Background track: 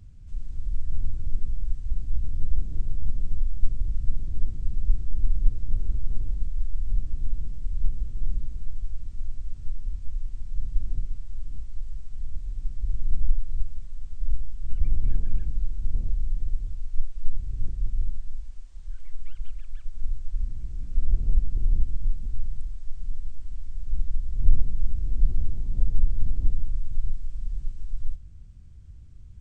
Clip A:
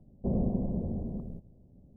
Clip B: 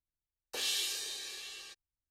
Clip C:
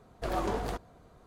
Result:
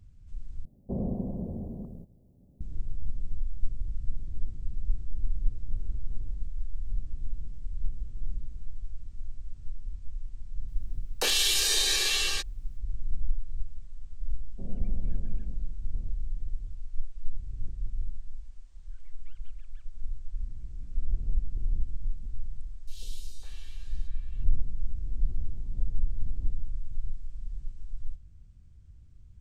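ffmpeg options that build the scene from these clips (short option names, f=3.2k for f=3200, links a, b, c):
-filter_complex "[1:a]asplit=2[a][b];[2:a]asplit=2[c][d];[0:a]volume=-6.5dB[e];[a]crystalizer=i=1.5:c=0[f];[c]alimiter=level_in=34dB:limit=-1dB:release=50:level=0:latency=1[g];[b]equalizer=f=92:t=o:w=2.3:g=5.5[h];[d]acrossover=split=550|2900[i][j][k];[i]adelay=140[l];[j]adelay=550[m];[l][m][k]amix=inputs=3:normalize=0[n];[e]asplit=2[o][p];[o]atrim=end=0.654[q];[f]atrim=end=1.96,asetpts=PTS-STARTPTS,volume=-2.5dB[r];[p]atrim=start=2.606[s];[g]atrim=end=2.1,asetpts=PTS-STARTPTS,volume=-15.5dB,afade=t=in:d=0.004:c=hsin,afade=t=out:st=2.096:d=0.004:c=hsin,adelay=10680[t];[h]atrim=end=1.96,asetpts=PTS-STARTPTS,volume=-16.5dB,afade=t=in:d=0.004:c=hsin,afade=t=out:st=1.956:d=0.004:c=hsin,adelay=14340[u];[n]atrim=end=2.1,asetpts=PTS-STARTPTS,volume=-14.5dB,afade=t=in:d=0.004:c=hsin,afade=t=out:st=2.096:d=0.004:c=hsin,adelay=22340[v];[q][r]acrossfade=d=0.004:c1=hsin:c2=hsin[w];[w][s]acrossfade=d=0.004:c1=hsin:c2=hsin[x];[x][t][u][v]amix=inputs=4:normalize=0"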